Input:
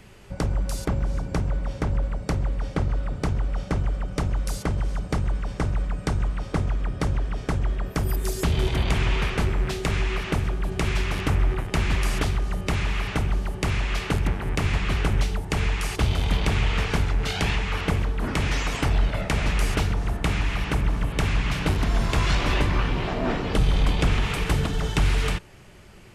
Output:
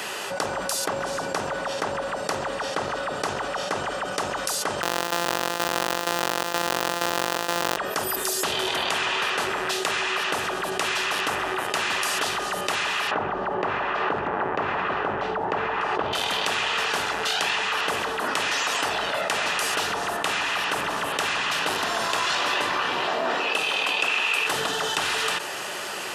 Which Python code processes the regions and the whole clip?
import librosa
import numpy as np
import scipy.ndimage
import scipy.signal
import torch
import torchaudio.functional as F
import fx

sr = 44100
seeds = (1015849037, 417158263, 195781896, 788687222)

y = fx.chain(x, sr, fx.sample_sort(block=256),
    fx.resample_bad(factor=2, down='filtered', up='hold'), at=(4.82, 7.77))
y = fx.chain(y, sr, fx.lowpass(hz=1200.0, slope=12),
    fx.env_flatten(amount_pct=70), at=(13.11, 16.13))
y = fx.chain(y, sr, fx.highpass(hz=240.0, slope=12),
    fx.peak_eq(hz=2600.0, db=14.0, octaves=0.23), at=(23.4, 24.47))
y = scipy.signal.sosfilt(scipy.signal.butter(2, 640.0, 'highpass', fs=sr, output='sos'), y)
y = fx.notch(y, sr, hz=2200.0, q=6.3)
y = fx.env_flatten(y, sr, amount_pct=70)